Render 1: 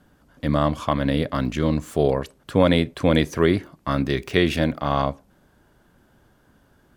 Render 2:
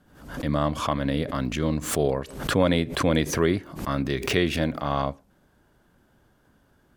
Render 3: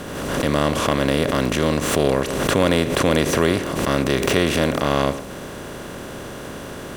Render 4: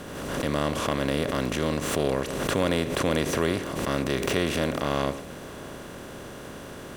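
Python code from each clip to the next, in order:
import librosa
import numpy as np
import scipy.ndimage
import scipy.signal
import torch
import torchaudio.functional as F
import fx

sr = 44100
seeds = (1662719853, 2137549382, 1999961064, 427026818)

y1 = fx.pre_swell(x, sr, db_per_s=86.0)
y1 = F.gain(torch.from_numpy(y1), -4.0).numpy()
y2 = fx.bin_compress(y1, sr, power=0.4)
y3 = y2 + 10.0 ** (-21.5 / 20.0) * np.pad(y2, (int(654 * sr / 1000.0), 0))[:len(y2)]
y3 = F.gain(torch.from_numpy(y3), -7.0).numpy()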